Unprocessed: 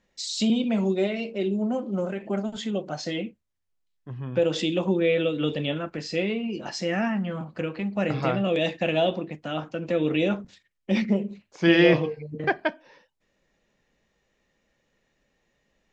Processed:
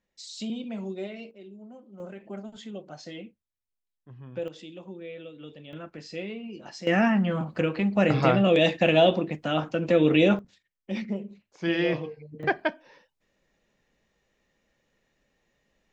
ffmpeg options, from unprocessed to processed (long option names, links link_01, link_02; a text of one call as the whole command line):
ffmpeg -i in.wav -af "asetnsamples=nb_out_samples=441:pad=0,asendcmd='1.31 volume volume -20dB;2 volume volume -10.5dB;4.48 volume volume -18dB;5.73 volume volume -9dB;6.87 volume volume 4dB;10.39 volume volume -8dB;12.43 volume volume -1dB',volume=-10.5dB" out.wav